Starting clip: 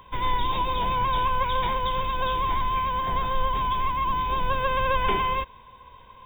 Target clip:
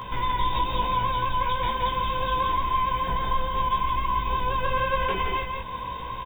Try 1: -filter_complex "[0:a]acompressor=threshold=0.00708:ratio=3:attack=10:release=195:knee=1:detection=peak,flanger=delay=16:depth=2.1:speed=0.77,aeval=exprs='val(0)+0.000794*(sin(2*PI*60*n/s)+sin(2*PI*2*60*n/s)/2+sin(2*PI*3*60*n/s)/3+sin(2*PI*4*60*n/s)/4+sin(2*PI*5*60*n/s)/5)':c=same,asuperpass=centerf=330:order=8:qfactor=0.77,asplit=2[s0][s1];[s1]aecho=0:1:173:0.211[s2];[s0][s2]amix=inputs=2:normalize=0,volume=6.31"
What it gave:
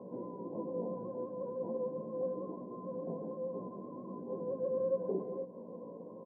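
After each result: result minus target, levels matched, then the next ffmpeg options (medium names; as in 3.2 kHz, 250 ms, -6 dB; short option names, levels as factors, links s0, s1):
250 Hz band +11.0 dB; echo-to-direct -10.5 dB
-filter_complex "[0:a]acompressor=threshold=0.00708:ratio=3:attack=10:release=195:knee=1:detection=peak,flanger=delay=16:depth=2.1:speed=0.77,aeval=exprs='val(0)+0.000794*(sin(2*PI*60*n/s)+sin(2*PI*2*60*n/s)/2+sin(2*PI*3*60*n/s)/3+sin(2*PI*4*60*n/s)/4+sin(2*PI*5*60*n/s)/5)':c=same,asplit=2[s0][s1];[s1]aecho=0:1:173:0.211[s2];[s0][s2]amix=inputs=2:normalize=0,volume=6.31"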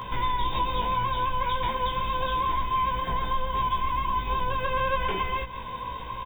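echo-to-direct -10.5 dB
-filter_complex "[0:a]acompressor=threshold=0.00708:ratio=3:attack=10:release=195:knee=1:detection=peak,flanger=delay=16:depth=2.1:speed=0.77,aeval=exprs='val(0)+0.000794*(sin(2*PI*60*n/s)+sin(2*PI*2*60*n/s)/2+sin(2*PI*3*60*n/s)/3+sin(2*PI*4*60*n/s)/4+sin(2*PI*5*60*n/s)/5)':c=same,asplit=2[s0][s1];[s1]aecho=0:1:173:0.708[s2];[s0][s2]amix=inputs=2:normalize=0,volume=6.31"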